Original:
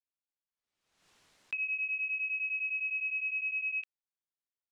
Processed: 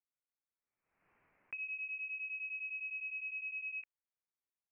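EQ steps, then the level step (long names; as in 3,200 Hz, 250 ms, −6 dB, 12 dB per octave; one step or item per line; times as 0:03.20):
elliptic low-pass filter 2,400 Hz
−3.0 dB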